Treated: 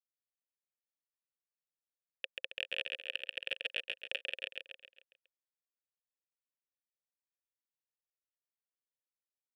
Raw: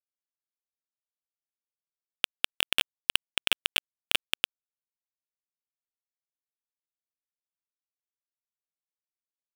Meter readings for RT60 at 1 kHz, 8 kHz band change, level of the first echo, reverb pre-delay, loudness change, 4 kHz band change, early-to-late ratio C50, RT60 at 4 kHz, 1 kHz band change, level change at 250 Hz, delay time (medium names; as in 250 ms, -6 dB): no reverb, under -25 dB, -3.0 dB, no reverb, -11.0 dB, -13.0 dB, no reverb, no reverb, -20.0 dB, -16.5 dB, 136 ms